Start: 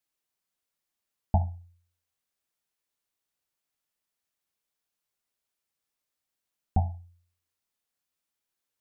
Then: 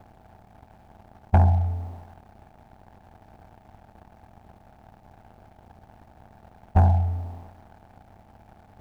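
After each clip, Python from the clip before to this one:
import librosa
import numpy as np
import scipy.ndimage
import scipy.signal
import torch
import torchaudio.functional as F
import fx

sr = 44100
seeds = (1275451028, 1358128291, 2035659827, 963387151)

y = fx.bin_compress(x, sr, power=0.4)
y = fx.leveller(y, sr, passes=2)
y = F.gain(torch.from_numpy(y), 1.5).numpy()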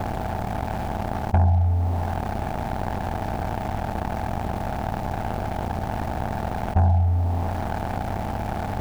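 y = fx.env_flatten(x, sr, amount_pct=70)
y = F.gain(torch.from_numpy(y), -2.5).numpy()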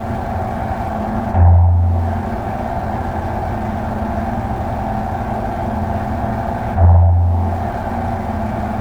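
y = fx.rev_fdn(x, sr, rt60_s=1.1, lf_ratio=0.75, hf_ratio=0.3, size_ms=26.0, drr_db=-8.0)
y = fx.doppler_dist(y, sr, depth_ms=0.35)
y = F.gain(torch.from_numpy(y), -3.0).numpy()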